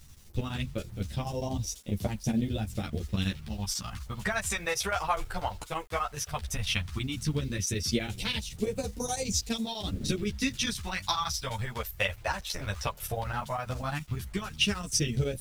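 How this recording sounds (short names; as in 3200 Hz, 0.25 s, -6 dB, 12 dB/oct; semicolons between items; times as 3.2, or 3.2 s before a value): chopped level 12 Hz, depth 65%, duty 75%; phasing stages 2, 0.14 Hz, lowest notch 230–1300 Hz; a quantiser's noise floor 10-bit, dither none; a shimmering, thickened sound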